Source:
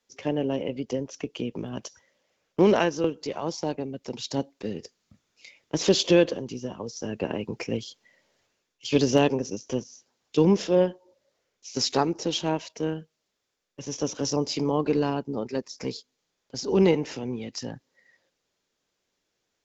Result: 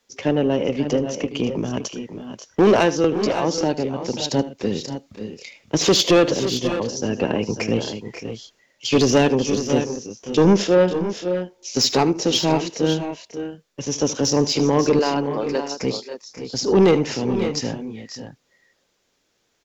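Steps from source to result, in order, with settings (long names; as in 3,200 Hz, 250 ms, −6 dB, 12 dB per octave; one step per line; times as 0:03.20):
0:14.99–0:15.74: high-pass filter 400 Hz 12 dB per octave
soft clipping −17.5 dBFS, distortion −11 dB
multi-tap delay 76/538/566 ms −16/−13/−11 dB
level +9 dB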